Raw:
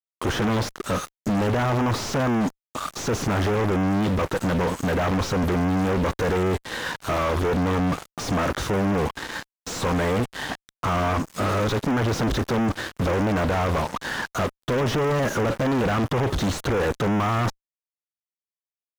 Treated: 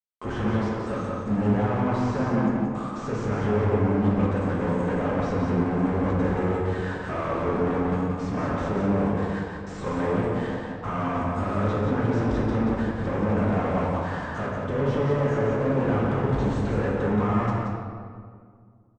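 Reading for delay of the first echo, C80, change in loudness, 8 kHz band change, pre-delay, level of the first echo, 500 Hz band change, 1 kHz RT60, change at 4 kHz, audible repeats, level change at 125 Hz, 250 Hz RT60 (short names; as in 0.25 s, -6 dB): 0.177 s, -0.5 dB, -1.5 dB, under -15 dB, 3 ms, -4.5 dB, -1.0 dB, 1.9 s, -13.0 dB, 1, -0.5 dB, 2.3 s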